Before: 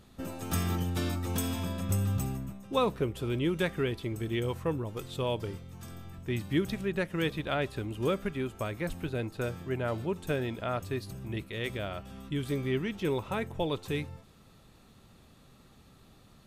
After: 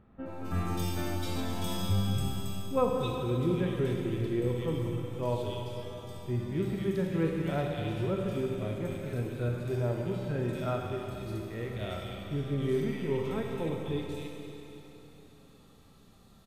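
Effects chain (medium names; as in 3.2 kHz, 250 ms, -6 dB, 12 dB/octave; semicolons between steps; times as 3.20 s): bands offset in time lows, highs 260 ms, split 2.2 kHz; harmonic-percussive split percussive -15 dB; Schroeder reverb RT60 3.4 s, combs from 33 ms, DRR 1 dB; trim +1 dB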